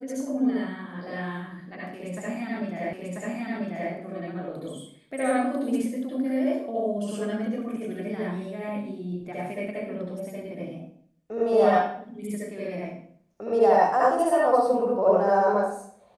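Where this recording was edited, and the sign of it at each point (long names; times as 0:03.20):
0:02.93: the same again, the last 0.99 s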